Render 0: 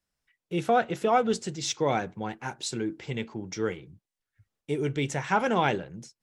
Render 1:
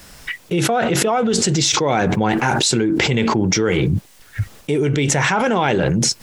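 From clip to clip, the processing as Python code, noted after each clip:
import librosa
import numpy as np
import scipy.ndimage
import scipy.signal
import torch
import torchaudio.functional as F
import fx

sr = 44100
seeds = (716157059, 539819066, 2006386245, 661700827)

y = fx.env_flatten(x, sr, amount_pct=100)
y = y * 10.0 ** (2.0 / 20.0)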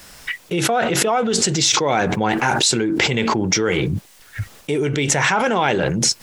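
y = fx.low_shelf(x, sr, hz=360.0, db=-6.0)
y = y * 10.0 ** (1.0 / 20.0)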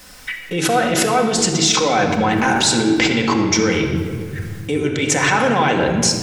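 y = fx.room_shoebox(x, sr, seeds[0], volume_m3=3900.0, walls='mixed', distance_m=2.0)
y = y * 10.0 ** (-1.0 / 20.0)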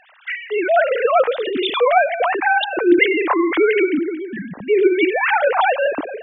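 y = fx.sine_speech(x, sr)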